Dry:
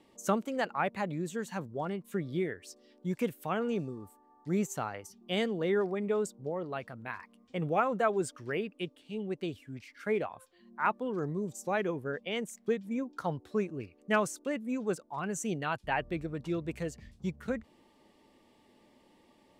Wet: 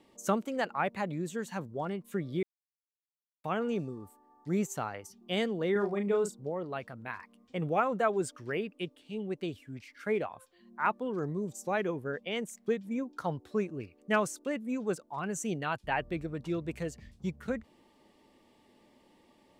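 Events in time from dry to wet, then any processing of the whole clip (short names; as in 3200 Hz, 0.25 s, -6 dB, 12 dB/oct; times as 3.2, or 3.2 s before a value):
2.43–3.44 mute
5.72–6.41 doubler 35 ms -5.5 dB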